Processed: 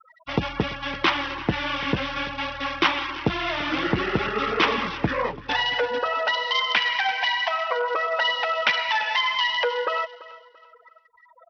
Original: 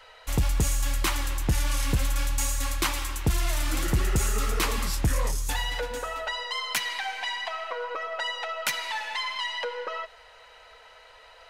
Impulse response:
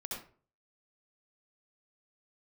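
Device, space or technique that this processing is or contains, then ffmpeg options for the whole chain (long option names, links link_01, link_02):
Bluetooth headset: -filter_complex "[0:a]asplit=3[link_01][link_02][link_03];[link_01]afade=type=out:start_time=7.79:duration=0.02[link_04];[link_02]lowpass=frequency=9200:width=0.5412,lowpass=frequency=9200:width=1.3066,afade=type=in:start_time=7.79:duration=0.02,afade=type=out:start_time=9.01:duration=0.02[link_05];[link_03]afade=type=in:start_time=9.01:duration=0.02[link_06];[link_04][link_05][link_06]amix=inputs=3:normalize=0,afftfilt=real='re*gte(hypot(re,im),0.0141)':imag='im*gte(hypot(re,im),0.0141)':win_size=1024:overlap=0.75,highpass=210,aecho=1:1:338|676|1014:0.119|0.0368|0.0114,aresample=8000,aresample=44100,volume=8.5dB" -ar 44100 -c:a sbc -b:a 64k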